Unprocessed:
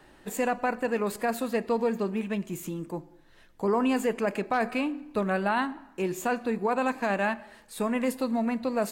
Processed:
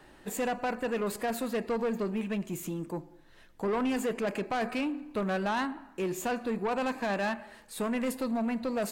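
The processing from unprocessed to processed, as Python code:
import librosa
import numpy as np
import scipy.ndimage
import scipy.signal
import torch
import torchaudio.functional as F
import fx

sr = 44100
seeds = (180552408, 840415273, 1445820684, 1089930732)

y = 10.0 ** (-25.0 / 20.0) * np.tanh(x / 10.0 ** (-25.0 / 20.0))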